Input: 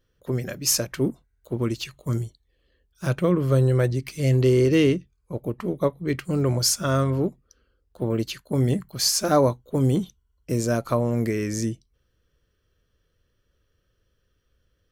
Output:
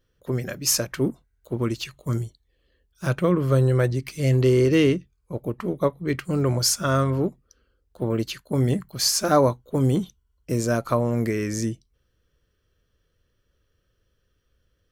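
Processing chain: dynamic bell 1.3 kHz, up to +3 dB, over -40 dBFS, Q 1.1

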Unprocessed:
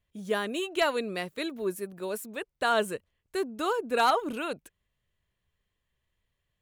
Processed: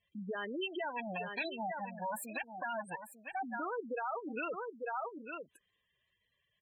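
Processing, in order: 0.84–3.43 s: comb filter that takes the minimum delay 1.2 ms; high-pass 270 Hz 6 dB/octave; delay 896 ms -13 dB; compression 6:1, threshold -36 dBFS, peak gain reduction 15.5 dB; spectral gate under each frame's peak -10 dB strong; peak limiter -34 dBFS, peak gain reduction 5.5 dB; peaking EQ 2.9 kHz +7 dB 2.1 oct; trim +2 dB

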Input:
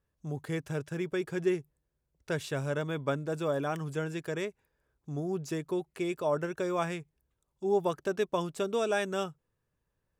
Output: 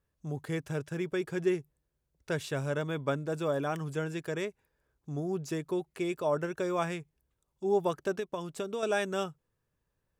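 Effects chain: 8.16–8.83 s: compression 6:1, threshold -32 dBFS, peak gain reduction 8 dB

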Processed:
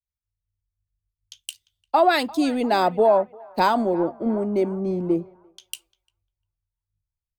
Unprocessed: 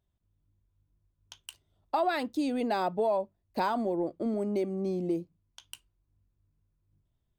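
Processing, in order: band-passed feedback delay 349 ms, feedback 63%, band-pass 1.1 kHz, level -14.5 dB; three bands expanded up and down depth 100%; trim +8.5 dB

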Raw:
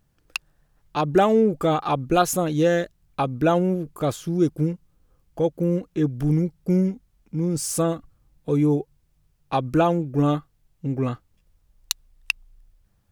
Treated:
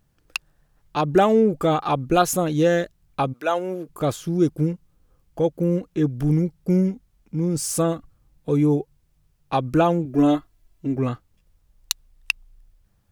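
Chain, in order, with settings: 3.32–3.88 s: high-pass 940 Hz -> 270 Hz 12 dB/octave; 10.05–10.96 s: comb 3 ms, depth 79%; trim +1 dB

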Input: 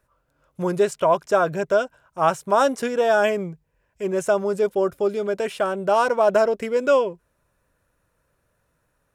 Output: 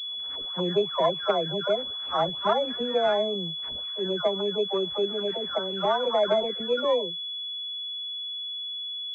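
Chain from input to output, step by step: delay that grows with frequency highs early, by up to 583 ms; class-D stage that switches slowly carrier 3.4 kHz; trim -4 dB

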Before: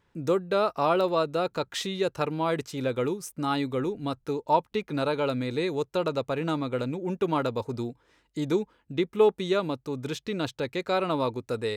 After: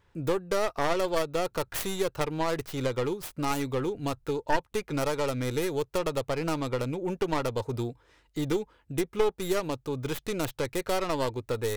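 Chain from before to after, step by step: tracing distortion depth 0.5 ms; peaking EQ 210 Hz -9.5 dB 1.3 oct; compression 2:1, threshold -31 dBFS, peak gain reduction 8.5 dB; bass shelf 350 Hz +6 dB; trim +2 dB

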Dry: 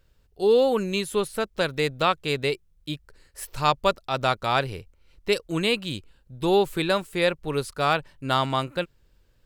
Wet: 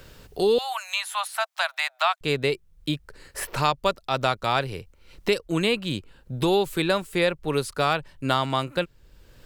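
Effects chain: 0.58–2.21 s: steep high-pass 650 Hz 96 dB/octave; three bands compressed up and down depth 70%

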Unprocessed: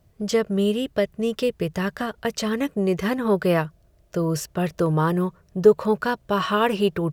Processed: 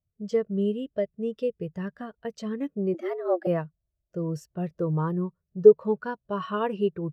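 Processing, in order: 2.94–3.47 s: frequency shift +170 Hz; spectral contrast expander 1.5:1

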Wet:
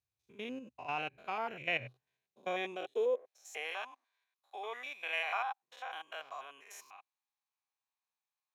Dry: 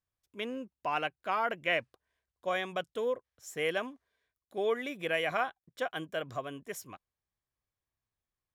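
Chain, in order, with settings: spectrogram pixelated in time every 100 ms; high-pass sweep 66 Hz -> 960 Hz, 1.42–3.75 s; graphic EQ with 31 bands 125 Hz +11 dB, 250 Hz +4 dB, 400 Hz +5 dB, 800 Hz +8 dB, 2.5 kHz +11 dB, 4 kHz +10 dB, 6.3 kHz +8 dB; trim -7.5 dB

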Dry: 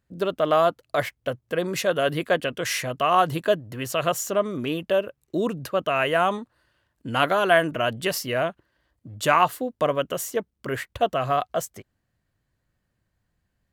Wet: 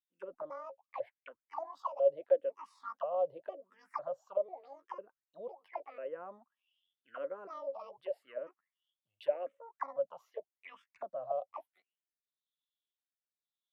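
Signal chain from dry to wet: pitch shift switched off and on +10.5 st, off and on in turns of 498 ms; auto-wah 550–3700 Hz, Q 13, down, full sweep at -20.5 dBFS; barber-pole phaser -0.85 Hz

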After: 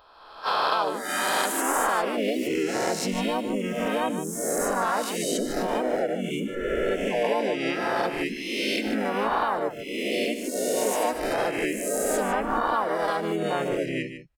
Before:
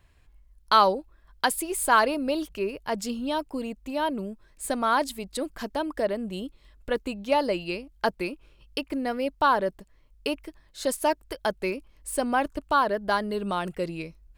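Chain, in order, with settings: reverse spectral sustain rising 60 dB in 1.60 s; spectral noise reduction 22 dB; peaking EQ 190 Hz -9 dB 0.27 oct; compression 4:1, threshold -30 dBFS, peak gain reduction 15.5 dB; harmony voices -4 st 0 dB, +3 st -6 dB; delay 151 ms -10.5 dB; trim +2.5 dB

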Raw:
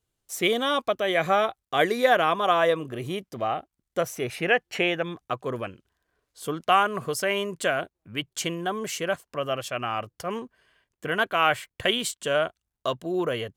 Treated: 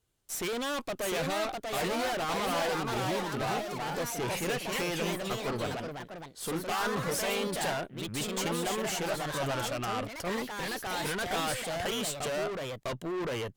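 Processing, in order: valve stage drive 35 dB, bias 0.4; ever faster or slower copies 750 ms, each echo +2 st, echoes 3; trim +3.5 dB

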